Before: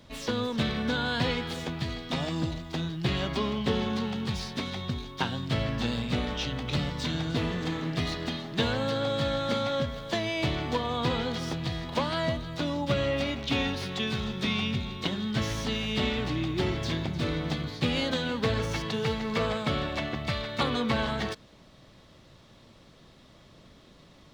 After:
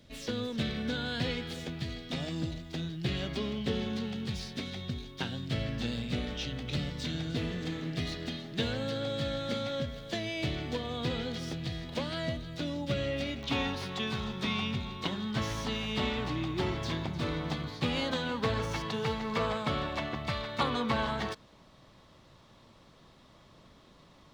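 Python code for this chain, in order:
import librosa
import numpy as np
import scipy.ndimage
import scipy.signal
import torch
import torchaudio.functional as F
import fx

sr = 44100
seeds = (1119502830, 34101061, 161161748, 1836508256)

y = fx.peak_eq(x, sr, hz=1000.0, db=fx.steps((0.0, -9.5), (13.43, 5.5)), octaves=0.77)
y = y * 10.0 ** (-4.0 / 20.0)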